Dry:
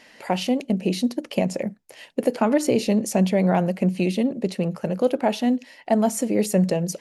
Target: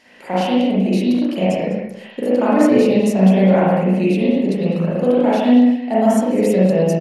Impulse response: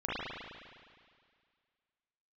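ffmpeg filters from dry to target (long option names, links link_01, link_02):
-filter_complex "[0:a]asplit=2[link_01][link_02];[link_02]adelay=204.1,volume=-13dB,highshelf=frequency=4000:gain=-4.59[link_03];[link_01][link_03]amix=inputs=2:normalize=0[link_04];[1:a]atrim=start_sample=2205,afade=type=out:start_time=0.3:duration=0.01,atrim=end_sample=13671,asetrate=42777,aresample=44100[link_05];[link_04][link_05]afir=irnorm=-1:irlink=0,volume=-1.5dB"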